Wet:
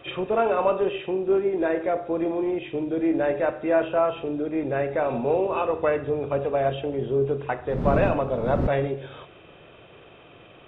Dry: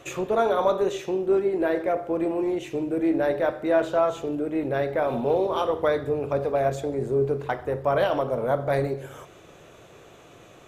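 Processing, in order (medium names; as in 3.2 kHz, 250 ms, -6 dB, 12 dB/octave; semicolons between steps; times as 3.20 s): knee-point frequency compression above 2.4 kHz 4:1; 7.68–8.66 s: wind noise 250 Hz -23 dBFS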